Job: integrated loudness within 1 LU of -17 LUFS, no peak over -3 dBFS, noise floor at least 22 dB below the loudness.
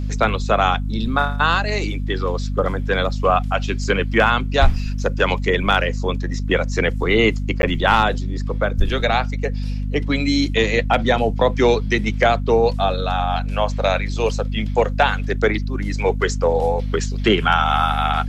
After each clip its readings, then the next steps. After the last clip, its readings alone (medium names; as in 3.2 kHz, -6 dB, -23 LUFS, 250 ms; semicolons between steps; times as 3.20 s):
dropouts 1; longest dropout 11 ms; hum 50 Hz; highest harmonic 250 Hz; hum level -21 dBFS; loudness -19.5 LUFS; peak level -3.0 dBFS; loudness target -17.0 LUFS
-> interpolate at 7.62 s, 11 ms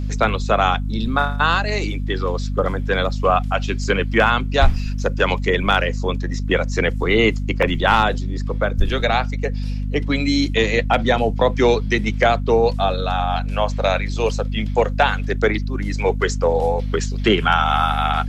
dropouts 0; hum 50 Hz; highest harmonic 250 Hz; hum level -21 dBFS
-> hum notches 50/100/150/200/250 Hz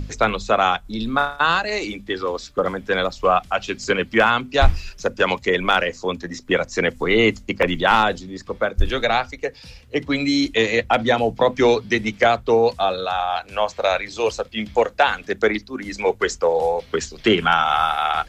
hum not found; loudness -20.5 LUFS; peak level -4.0 dBFS; loudness target -17.0 LUFS
-> trim +3.5 dB; peak limiter -3 dBFS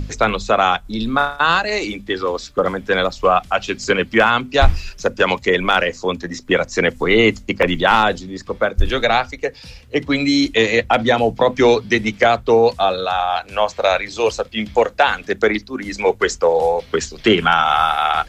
loudness -17.5 LUFS; peak level -3.0 dBFS; noise floor -43 dBFS